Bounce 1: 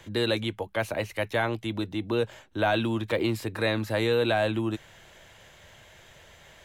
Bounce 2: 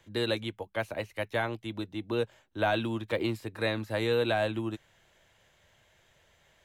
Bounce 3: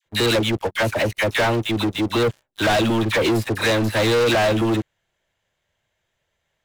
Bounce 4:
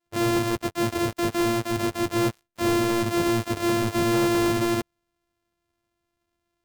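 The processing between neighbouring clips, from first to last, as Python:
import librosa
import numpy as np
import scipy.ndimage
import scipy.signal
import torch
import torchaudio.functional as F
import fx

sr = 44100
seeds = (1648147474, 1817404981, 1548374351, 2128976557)

y1 = fx.upward_expand(x, sr, threshold_db=-42.0, expansion=1.5)
y1 = F.gain(torch.from_numpy(y1), -2.0).numpy()
y2 = fx.dispersion(y1, sr, late='lows', ms=54.0, hz=1100.0)
y2 = fx.leveller(y2, sr, passes=5)
y3 = np.r_[np.sort(y2[:len(y2) // 128 * 128].reshape(-1, 128), axis=1).ravel(), y2[len(y2) // 128 * 128:]]
y3 = F.gain(torch.from_numpy(y3), -4.0).numpy()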